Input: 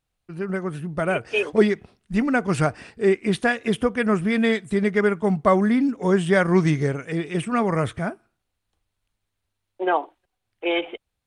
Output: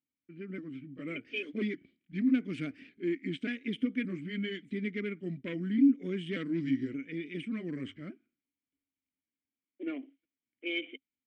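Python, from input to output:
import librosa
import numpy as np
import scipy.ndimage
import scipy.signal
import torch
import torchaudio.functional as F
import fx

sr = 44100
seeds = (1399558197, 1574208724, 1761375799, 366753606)

y = fx.pitch_trill(x, sr, semitones=-2.0, every_ms=578)
y = fx.env_lowpass(y, sr, base_hz=2000.0, full_db=-19.5)
y = fx.fold_sine(y, sr, drive_db=5, ceiling_db=-5.0)
y = fx.vowel_filter(y, sr, vowel='i')
y = fx.hum_notches(y, sr, base_hz=50, count=2)
y = y * librosa.db_to_amplitude(-7.5)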